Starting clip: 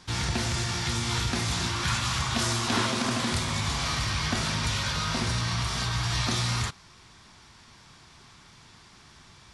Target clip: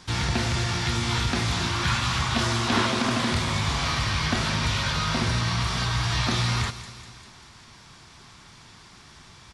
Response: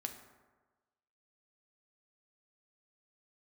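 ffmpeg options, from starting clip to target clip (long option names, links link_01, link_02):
-filter_complex "[0:a]aecho=1:1:198|396|594|792|990:0.158|0.0903|0.0515|0.0294|0.0167,acrossover=split=4800[link_01][link_02];[link_02]acompressor=threshold=-42dB:ratio=4:attack=1:release=60[link_03];[link_01][link_03]amix=inputs=2:normalize=0,volume=3.5dB"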